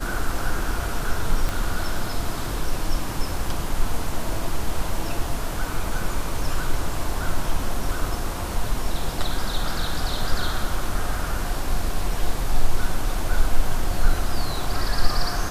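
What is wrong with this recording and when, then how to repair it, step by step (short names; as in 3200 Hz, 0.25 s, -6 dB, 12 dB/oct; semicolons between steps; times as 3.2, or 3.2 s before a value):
1.49 pop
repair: de-click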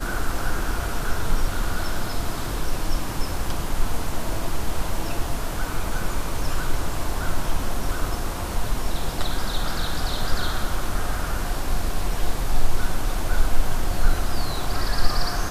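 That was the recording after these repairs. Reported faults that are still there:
1.49 pop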